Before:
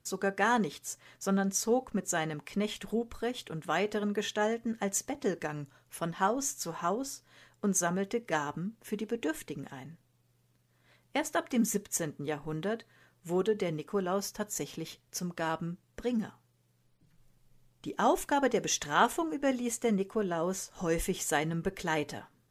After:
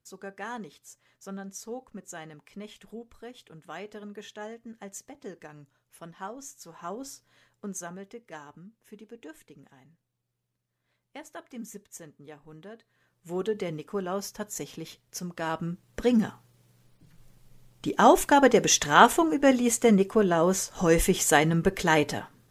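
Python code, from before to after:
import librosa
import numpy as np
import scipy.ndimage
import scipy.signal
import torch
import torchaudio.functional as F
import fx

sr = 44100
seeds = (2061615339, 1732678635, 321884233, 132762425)

y = fx.gain(x, sr, db=fx.line((6.69, -10.0), (7.07, -2.0), (8.23, -12.0), (12.73, -12.0), (13.48, 0.0), (15.34, 0.0), (16.04, 9.0)))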